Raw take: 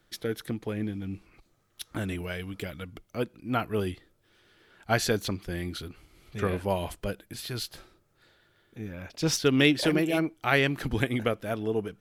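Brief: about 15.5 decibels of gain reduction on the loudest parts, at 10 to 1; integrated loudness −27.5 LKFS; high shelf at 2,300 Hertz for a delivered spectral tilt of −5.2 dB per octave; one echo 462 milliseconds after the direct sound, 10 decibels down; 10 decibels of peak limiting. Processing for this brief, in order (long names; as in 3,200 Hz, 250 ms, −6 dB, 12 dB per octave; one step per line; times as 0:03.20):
high-shelf EQ 2,300 Hz −5.5 dB
downward compressor 10 to 1, threshold −34 dBFS
brickwall limiter −32 dBFS
single-tap delay 462 ms −10 dB
level +15 dB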